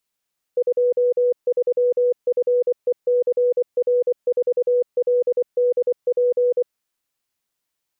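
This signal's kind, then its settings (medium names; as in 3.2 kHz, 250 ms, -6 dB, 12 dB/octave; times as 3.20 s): Morse "23FECR4LDP" 24 wpm 491 Hz -14.5 dBFS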